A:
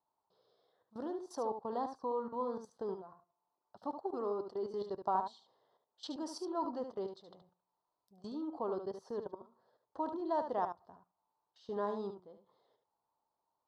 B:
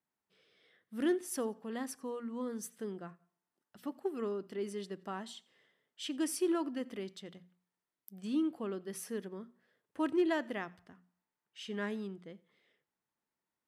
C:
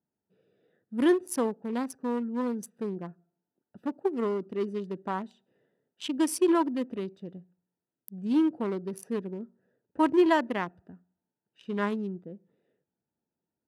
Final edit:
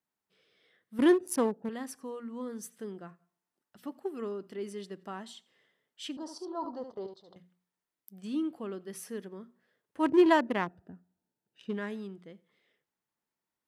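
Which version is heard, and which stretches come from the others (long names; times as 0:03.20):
B
0:00.99–0:01.69: punch in from C
0:06.17–0:07.36: punch in from A
0:10.04–0:11.75: punch in from C, crossfade 0.10 s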